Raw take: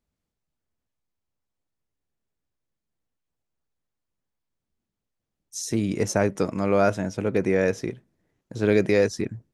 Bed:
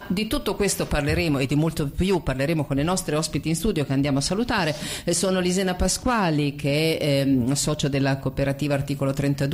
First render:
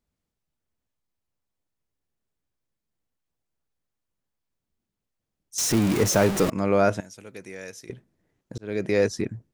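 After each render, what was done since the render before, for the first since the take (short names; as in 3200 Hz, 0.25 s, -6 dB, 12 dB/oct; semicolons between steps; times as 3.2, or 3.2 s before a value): 5.58–6.5 zero-crossing step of -22.5 dBFS; 7–7.9 pre-emphasis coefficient 0.9; 8.58–9.06 fade in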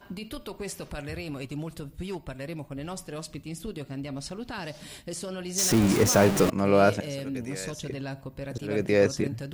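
add bed -13.5 dB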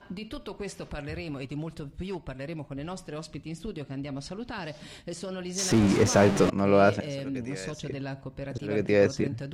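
air absorption 63 m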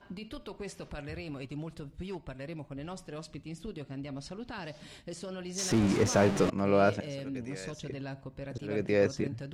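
gain -4.5 dB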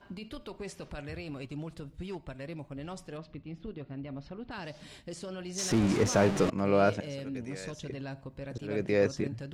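3.17–4.51 air absorption 290 m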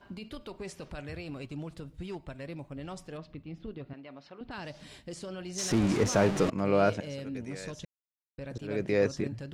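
3.93–4.41 weighting filter A; 7.85–8.38 mute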